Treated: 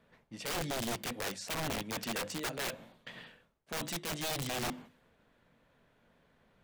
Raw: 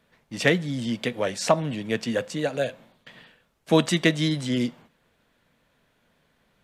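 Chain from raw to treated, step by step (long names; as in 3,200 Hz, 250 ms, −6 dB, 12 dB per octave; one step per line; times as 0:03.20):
mains-hum notches 50/100/150/200/250/300/350 Hz
reversed playback
downward compressor 16 to 1, threshold −31 dBFS, peak gain reduction 19 dB
reversed playback
wrap-around overflow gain 30.5 dB
one half of a high-frequency compander decoder only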